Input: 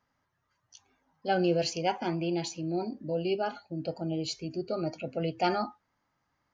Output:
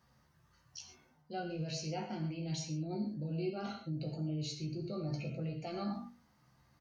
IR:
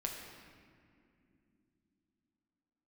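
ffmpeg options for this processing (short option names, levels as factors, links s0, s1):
-filter_complex "[0:a]highpass=f=110:p=1,bass=f=250:g=14,treble=f=4000:g=7,bandreject=f=50:t=h:w=6,bandreject=f=100:t=h:w=6,bandreject=f=150:t=h:w=6,bandreject=f=200:t=h:w=6,bandreject=f=250:t=h:w=6,areverse,acompressor=threshold=0.0126:ratio=12,areverse,alimiter=level_in=3.98:limit=0.0631:level=0:latency=1:release=32,volume=0.251,asplit=2[s0][s1];[s1]adelay=13,volume=0.501[s2];[s0][s2]amix=inputs=2:normalize=0[s3];[1:a]atrim=start_sample=2205,atrim=end_sample=6615,asetrate=48510,aresample=44100[s4];[s3][s4]afir=irnorm=-1:irlink=0,asetrate=42336,aresample=44100,volume=1.68"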